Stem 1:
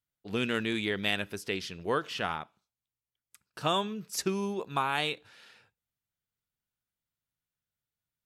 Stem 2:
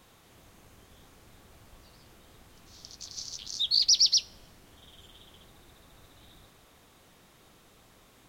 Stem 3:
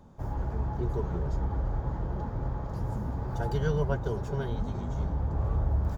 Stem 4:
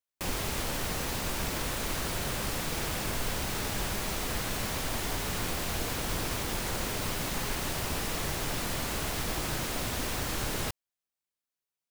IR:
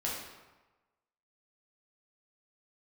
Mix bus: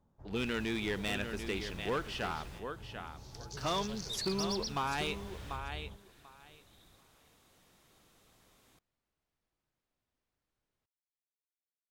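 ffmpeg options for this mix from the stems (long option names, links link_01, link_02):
-filter_complex "[0:a]volume=-3dB,asplit=3[link_01][link_02][link_03];[link_02]volume=-9.5dB[link_04];[1:a]highshelf=frequency=6300:gain=11.5,acrossover=split=220[link_05][link_06];[link_06]acompressor=threshold=-31dB:ratio=3[link_07];[link_05][link_07]amix=inputs=2:normalize=0,adelay=500,volume=-8dB[link_08];[2:a]volume=-18.5dB[link_09];[3:a]adelay=150,volume=-19dB[link_10];[link_03]apad=whole_len=531730[link_11];[link_10][link_11]sidechaingate=range=-36dB:threshold=-60dB:ratio=16:detection=peak[link_12];[link_04]aecho=0:1:741|1482|2223:1|0.16|0.0256[link_13];[link_01][link_08][link_09][link_12][link_13]amix=inputs=5:normalize=0,highshelf=frequency=8700:gain=-10.5,asoftclip=type=hard:threshold=-28dB"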